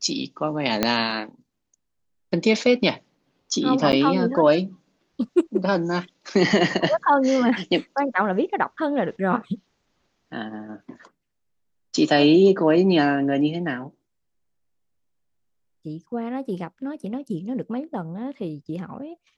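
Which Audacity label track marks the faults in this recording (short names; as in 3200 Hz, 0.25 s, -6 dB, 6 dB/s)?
0.830000	0.830000	pop -4 dBFS
3.920000	3.930000	gap 9.1 ms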